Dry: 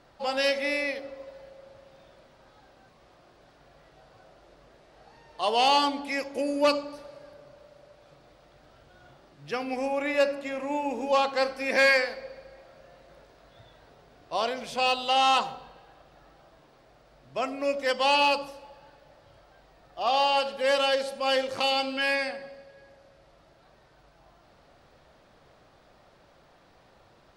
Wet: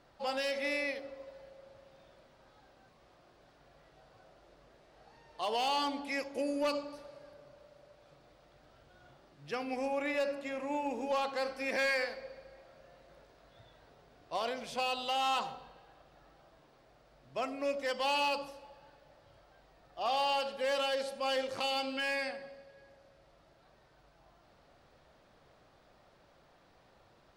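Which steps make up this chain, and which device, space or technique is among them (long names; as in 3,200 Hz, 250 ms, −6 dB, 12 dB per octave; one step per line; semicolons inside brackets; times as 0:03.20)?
limiter into clipper (brickwall limiter −18 dBFS, peak gain reduction 5.5 dB; hard clipping −20.5 dBFS, distortion −23 dB)
level −5.5 dB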